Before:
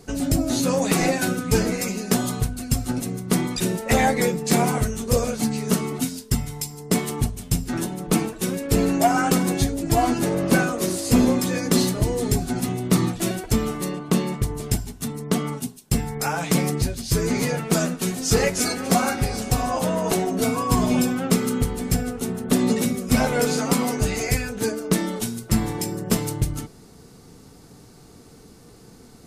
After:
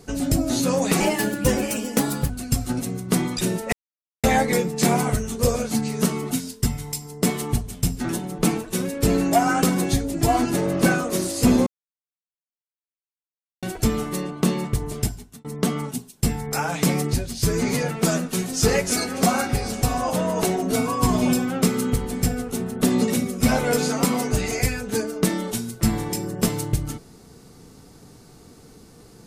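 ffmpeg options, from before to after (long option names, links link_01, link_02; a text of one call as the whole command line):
ffmpeg -i in.wav -filter_complex "[0:a]asplit=7[link_01][link_02][link_03][link_04][link_05][link_06][link_07];[link_01]atrim=end=1.004[link_08];[link_02]atrim=start=1:end=2.49,asetpts=PTS-STARTPTS,asetrate=50715,aresample=44100,atrim=end_sample=57138,asetpts=PTS-STARTPTS[link_09];[link_03]atrim=start=2.486:end=3.92,asetpts=PTS-STARTPTS,afade=type=out:start_time=1.43:duration=0.004:curve=hsin,apad=pad_dur=0.51[link_10];[link_04]atrim=start=3.92:end=11.35,asetpts=PTS-STARTPTS,afade=type=in:duration=0.004:curve=hsin,afade=type=out:start_time=7.426:duration=0.004:curve=hsin[link_11];[link_05]atrim=start=11.35:end=13.31,asetpts=PTS-STARTPTS,volume=0[link_12];[link_06]atrim=start=13.31:end=15.13,asetpts=PTS-STARTPTS,afade=type=in:duration=0.004:curve=hsin,afade=type=out:start_time=1.36:duration=0.46[link_13];[link_07]atrim=start=15.13,asetpts=PTS-STARTPTS,afade=type=in:duration=0.004:curve=hsin[link_14];[link_08][link_09]acrossfade=duration=0.004:curve1=hsin:curve2=hsin[link_15];[link_10][link_11][link_12][link_13][link_14]concat=n=5:v=0:a=1[link_16];[link_15][link_16]acrossfade=duration=0.004:curve1=hsin:curve2=hsin" out.wav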